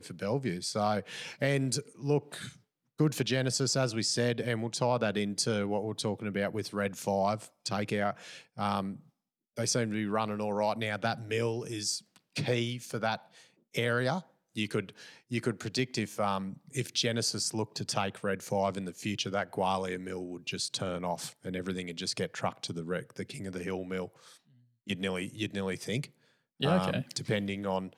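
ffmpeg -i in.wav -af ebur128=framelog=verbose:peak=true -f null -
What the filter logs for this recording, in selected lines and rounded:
Integrated loudness:
  I:         -32.6 LUFS
  Threshold: -43.0 LUFS
Loudness range:
  LRA:         6.0 LU
  Threshold: -53.1 LUFS
  LRA low:   -36.6 LUFS
  LRA high:  -30.6 LUFS
True peak:
  Peak:      -14.3 dBFS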